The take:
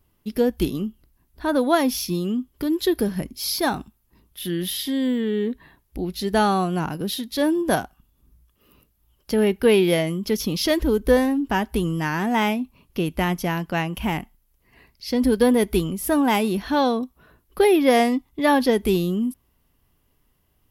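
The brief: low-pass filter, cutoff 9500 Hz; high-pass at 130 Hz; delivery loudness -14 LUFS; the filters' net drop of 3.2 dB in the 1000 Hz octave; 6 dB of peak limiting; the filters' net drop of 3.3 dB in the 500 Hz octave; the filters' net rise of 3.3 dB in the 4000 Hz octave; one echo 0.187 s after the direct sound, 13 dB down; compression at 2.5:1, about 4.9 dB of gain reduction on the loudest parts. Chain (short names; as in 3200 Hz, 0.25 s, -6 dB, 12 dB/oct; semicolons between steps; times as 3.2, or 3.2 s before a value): HPF 130 Hz; LPF 9500 Hz; bell 500 Hz -3.5 dB; bell 1000 Hz -3 dB; bell 4000 Hz +4.5 dB; compressor 2.5:1, threshold -22 dBFS; limiter -18 dBFS; echo 0.187 s -13 dB; gain +13.5 dB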